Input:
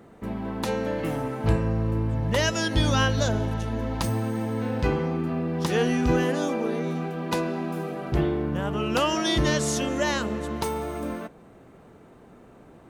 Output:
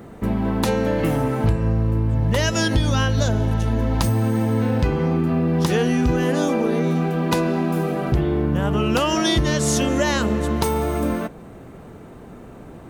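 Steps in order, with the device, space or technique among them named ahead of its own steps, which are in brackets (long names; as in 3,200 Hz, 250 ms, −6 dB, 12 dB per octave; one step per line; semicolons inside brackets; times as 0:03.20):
ASMR close-microphone chain (low-shelf EQ 180 Hz +6.5 dB; downward compressor 5 to 1, threshold −24 dBFS, peak gain reduction 11.5 dB; high-shelf EQ 11,000 Hz +6 dB)
level +8 dB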